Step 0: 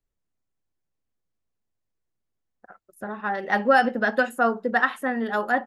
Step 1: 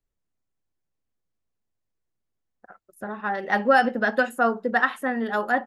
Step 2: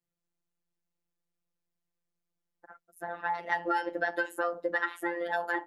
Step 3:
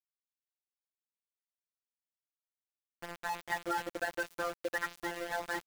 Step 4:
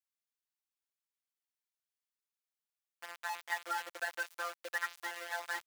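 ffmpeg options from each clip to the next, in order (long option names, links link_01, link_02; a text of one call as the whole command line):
ffmpeg -i in.wav -af anull out.wav
ffmpeg -i in.wav -af "afreqshift=50,afftfilt=real='hypot(re,im)*cos(PI*b)':imag='0':win_size=1024:overlap=0.75,acompressor=threshold=-26dB:ratio=5" out.wav
ffmpeg -i in.wav -af "aeval=exprs='val(0)*gte(abs(val(0)),0.0237)':channel_layout=same,volume=-5dB" out.wav
ffmpeg -i in.wav -af "highpass=900" out.wav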